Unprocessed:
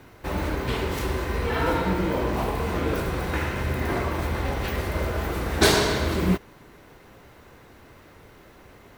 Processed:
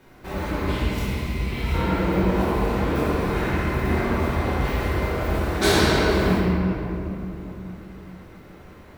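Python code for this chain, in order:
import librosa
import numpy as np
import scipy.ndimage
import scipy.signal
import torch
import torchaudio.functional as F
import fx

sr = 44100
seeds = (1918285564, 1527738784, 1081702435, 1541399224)

y = fx.spec_box(x, sr, start_s=0.71, length_s=1.02, low_hz=250.0, high_hz=1900.0, gain_db=-12)
y = fx.room_shoebox(y, sr, seeds[0], volume_m3=160.0, walls='hard', distance_m=1.1)
y = y * 10.0 ** (-6.5 / 20.0)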